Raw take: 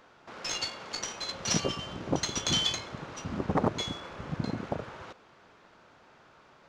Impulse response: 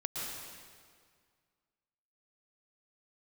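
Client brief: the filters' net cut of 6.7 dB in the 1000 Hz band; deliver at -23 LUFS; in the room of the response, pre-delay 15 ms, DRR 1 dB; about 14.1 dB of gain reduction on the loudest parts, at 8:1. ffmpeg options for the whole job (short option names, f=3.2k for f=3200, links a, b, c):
-filter_complex "[0:a]equalizer=f=1k:t=o:g=-9,acompressor=threshold=-39dB:ratio=8,asplit=2[a][b];[1:a]atrim=start_sample=2205,adelay=15[c];[b][c]afir=irnorm=-1:irlink=0,volume=-4dB[d];[a][d]amix=inputs=2:normalize=0,volume=17.5dB"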